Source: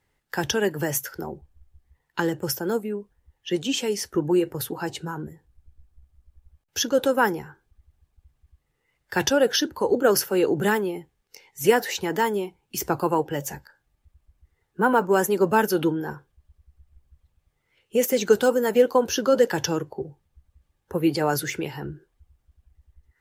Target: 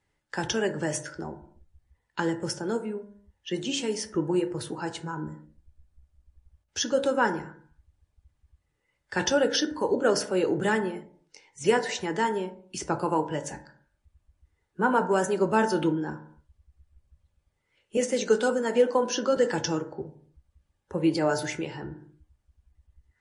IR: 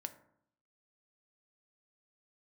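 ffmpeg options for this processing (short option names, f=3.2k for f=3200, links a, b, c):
-filter_complex "[0:a]asettb=1/sr,asplit=3[a][b][c];[a]atrim=end=17.974[d];[b]atrim=start=17.97:end=19.37,asetpts=PTS-STARTPTS,afade=t=in:d=0.004:c=qsin,afade=t=out:st=1.396:d=0.004:c=qsin,highpass=f=190:w=0.5412,highpass=f=190:w=1.3066[e];[c]atrim=start=19.366[f];[d][e]acrossfade=d=0.004:c1=hsin:c2=qsin[g];[g][f]acrossfade=d=0.004:c1=qsin:c2=hsin[h];[1:a]atrim=start_sample=2205,afade=t=out:st=0.35:d=0.01,atrim=end_sample=15876[i];[h][i]afir=irnorm=-1:irlink=0" -ar 24000 -c:a libmp3lame -b:a 40k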